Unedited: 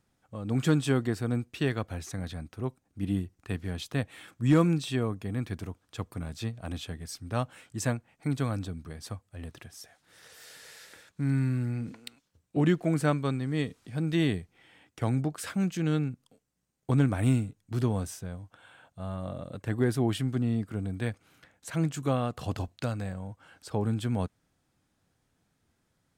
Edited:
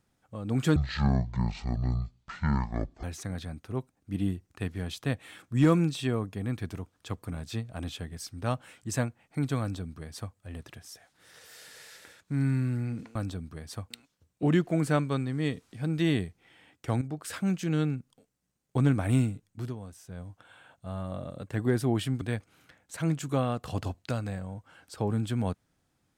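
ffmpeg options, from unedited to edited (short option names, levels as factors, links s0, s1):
-filter_complex "[0:a]asplit=9[s0][s1][s2][s3][s4][s5][s6][s7][s8];[s0]atrim=end=0.764[s9];[s1]atrim=start=0.76:end=1.92,asetpts=PTS-STARTPTS,asetrate=22491,aresample=44100[s10];[s2]atrim=start=1.916:end=12.042[s11];[s3]atrim=start=8.488:end=9.242[s12];[s4]atrim=start=12.038:end=15.15,asetpts=PTS-STARTPTS,afade=t=out:st=3.108:d=0.004:c=hsin:silence=0.237137[s13];[s5]atrim=start=15.15:end=17.88,asetpts=PTS-STARTPTS,afade=t=in:d=0.3:silence=0.237137,afade=t=out:st=2.45:d=0.28:silence=0.237137[s14];[s6]atrim=start=17.88:end=18.12,asetpts=PTS-STARTPTS,volume=0.237[s15];[s7]atrim=start=18.12:end=20.352,asetpts=PTS-STARTPTS,afade=t=in:d=0.28:silence=0.237137[s16];[s8]atrim=start=20.948[s17];[s9][s10]acrossfade=d=0.004:c1=hsin:c2=hsin[s18];[s18][s11]acrossfade=d=0.004:c1=hsin:c2=hsin[s19];[s19][s12]acrossfade=d=0.004:c1=hsin:c2=hsin[s20];[s13][s14][s15][s16]concat=n=4:v=0:a=1[s21];[s20][s21]acrossfade=d=0.004:c1=hsin:c2=hsin[s22];[s22][s17]acrossfade=d=0.004:c1=hsin:c2=hsin"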